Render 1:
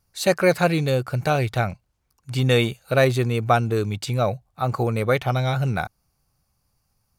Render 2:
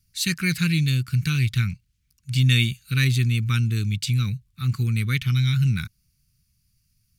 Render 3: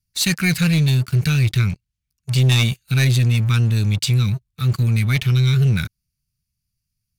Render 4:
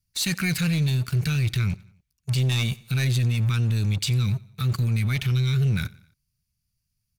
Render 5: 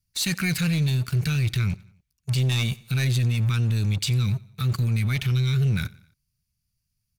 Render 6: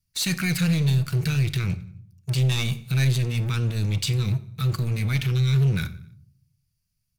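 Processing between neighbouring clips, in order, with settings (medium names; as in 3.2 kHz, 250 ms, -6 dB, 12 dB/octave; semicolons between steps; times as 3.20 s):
Chebyshev band-stop 170–2500 Hz, order 2; trim +3.5 dB
waveshaping leveller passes 3; trim -4.5 dB
peak limiter -18 dBFS, peak gain reduction 8.5 dB; feedback delay 89 ms, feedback 51%, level -23 dB
no audible change
hard clipper -20 dBFS, distortion -22 dB; simulated room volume 820 m³, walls furnished, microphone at 0.63 m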